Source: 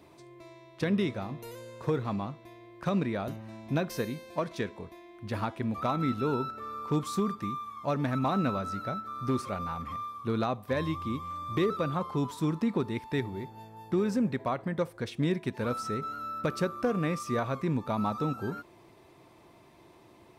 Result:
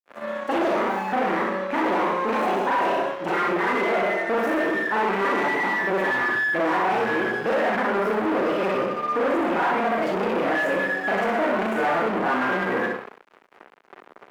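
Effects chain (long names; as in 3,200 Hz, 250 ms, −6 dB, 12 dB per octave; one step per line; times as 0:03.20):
gliding playback speed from 169% → 116%
on a send: flutter between parallel walls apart 10.8 metres, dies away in 0.61 s
on the sum: four-comb reverb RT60 0.48 s, combs from 32 ms, DRR −9 dB
fuzz pedal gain 34 dB, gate −41 dBFS
three-way crossover with the lows and the highs turned down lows −21 dB, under 260 Hz, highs −22 dB, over 2,300 Hz
level −5.5 dB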